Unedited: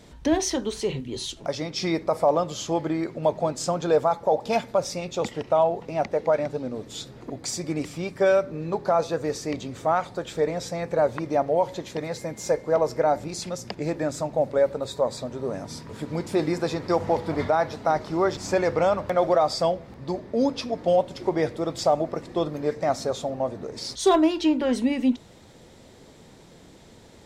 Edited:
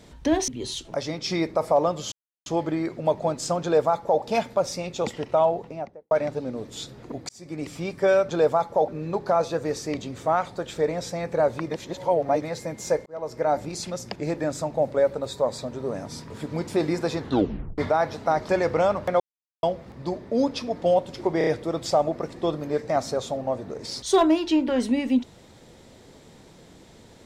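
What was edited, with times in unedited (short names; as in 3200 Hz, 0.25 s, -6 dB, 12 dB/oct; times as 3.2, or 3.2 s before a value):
0.48–1 cut
2.64 insert silence 0.34 s
3.8–4.39 copy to 8.47
5.65–6.29 studio fade out
7.47–7.96 fade in
11.29–12.01 reverse
12.65–13.15 fade in
16.77 tape stop 0.60 s
18.08–18.51 cut
19.22–19.65 mute
21.4 stutter 0.03 s, 4 plays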